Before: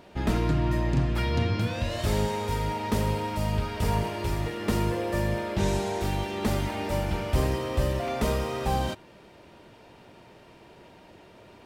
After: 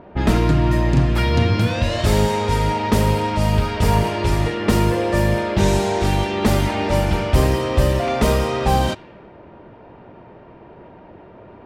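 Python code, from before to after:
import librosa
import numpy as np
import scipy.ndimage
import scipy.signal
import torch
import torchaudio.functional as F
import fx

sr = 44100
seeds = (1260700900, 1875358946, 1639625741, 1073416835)

p1 = fx.env_lowpass(x, sr, base_hz=1200.0, full_db=-22.5)
p2 = fx.rider(p1, sr, range_db=10, speed_s=0.5)
p3 = p1 + (p2 * librosa.db_to_amplitude(-2.5))
y = p3 * librosa.db_to_amplitude(4.5)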